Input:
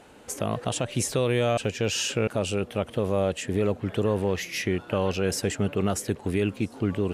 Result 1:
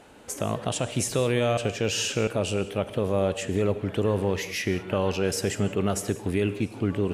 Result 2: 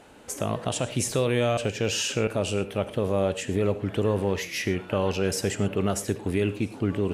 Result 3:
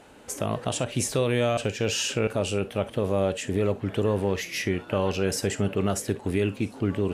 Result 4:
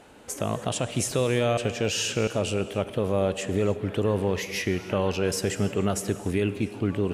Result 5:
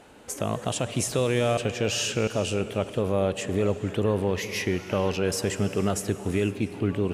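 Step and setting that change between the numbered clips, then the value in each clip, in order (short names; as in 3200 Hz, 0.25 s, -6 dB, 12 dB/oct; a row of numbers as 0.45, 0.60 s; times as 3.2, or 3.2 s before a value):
non-linear reverb, gate: 220, 140, 80, 340, 530 ms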